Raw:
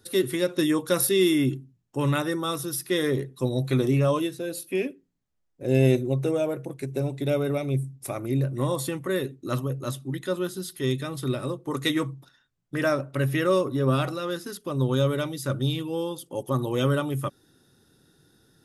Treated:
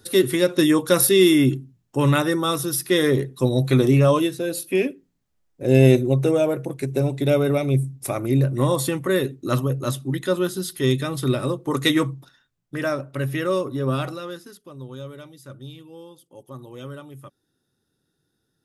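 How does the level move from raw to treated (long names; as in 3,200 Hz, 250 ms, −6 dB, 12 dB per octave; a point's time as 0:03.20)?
0:12.02 +6 dB
0:12.81 −0.5 dB
0:14.12 −0.5 dB
0:14.80 −13 dB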